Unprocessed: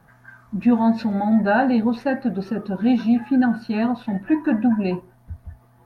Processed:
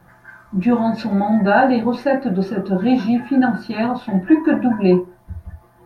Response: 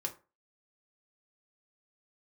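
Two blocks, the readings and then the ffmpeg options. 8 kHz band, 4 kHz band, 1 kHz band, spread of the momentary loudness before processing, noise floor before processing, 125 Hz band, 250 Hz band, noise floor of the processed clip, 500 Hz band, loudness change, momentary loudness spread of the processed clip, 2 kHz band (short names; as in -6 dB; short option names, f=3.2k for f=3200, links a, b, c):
n/a, +4.5 dB, +5.0 dB, 9 LU, -54 dBFS, +6.0 dB, +2.0 dB, -52 dBFS, +6.5 dB, +3.0 dB, 7 LU, +4.0 dB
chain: -filter_complex "[1:a]atrim=start_sample=2205,atrim=end_sample=3528[a];[0:a][a]afir=irnorm=-1:irlink=0,volume=4.5dB"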